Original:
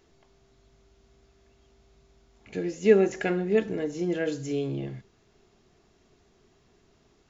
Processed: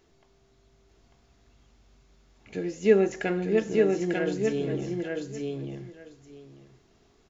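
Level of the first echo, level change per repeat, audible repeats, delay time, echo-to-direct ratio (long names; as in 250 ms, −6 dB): −3.0 dB, −15.5 dB, 2, 895 ms, −3.0 dB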